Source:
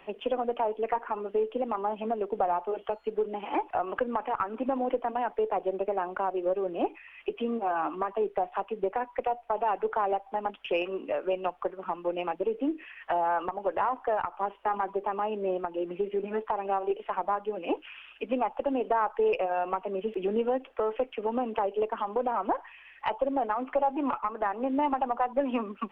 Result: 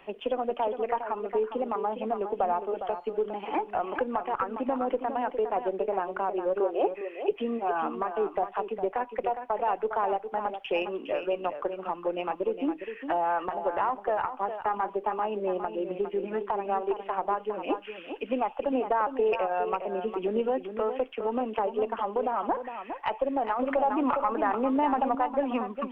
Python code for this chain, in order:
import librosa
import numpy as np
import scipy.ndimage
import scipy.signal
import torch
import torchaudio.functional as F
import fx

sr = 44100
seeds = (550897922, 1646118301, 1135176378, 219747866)

y = fx.low_shelf_res(x, sr, hz=300.0, db=-12.5, q=3.0, at=(6.6, 7.31))
y = y + 10.0 ** (-9.0 / 20.0) * np.pad(y, (int(409 * sr / 1000.0), 0))[:len(y)]
y = fx.env_flatten(y, sr, amount_pct=50, at=(23.59, 25.15))